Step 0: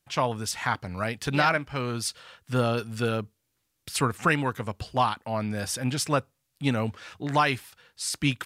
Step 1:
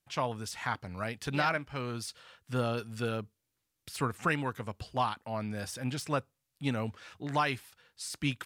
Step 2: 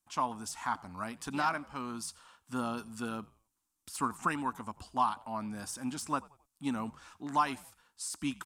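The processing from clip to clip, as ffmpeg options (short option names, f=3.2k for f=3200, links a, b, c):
-af "deesser=0.55,volume=-6.5dB"
-filter_complex "[0:a]equalizer=f=125:t=o:w=1:g=-12,equalizer=f=250:t=o:w=1:g=8,equalizer=f=500:t=o:w=1:g=-11,equalizer=f=1k:t=o:w=1:g=10,equalizer=f=2k:t=o:w=1:g=-7,equalizer=f=4k:t=o:w=1:g=-4,equalizer=f=8k:t=o:w=1:g=7,asplit=4[a][b][c][d];[b]adelay=89,afreqshift=-76,volume=-22.5dB[e];[c]adelay=178,afreqshift=-152,volume=-30.9dB[f];[d]adelay=267,afreqshift=-228,volume=-39.3dB[g];[a][e][f][g]amix=inputs=4:normalize=0,volume=-2.5dB"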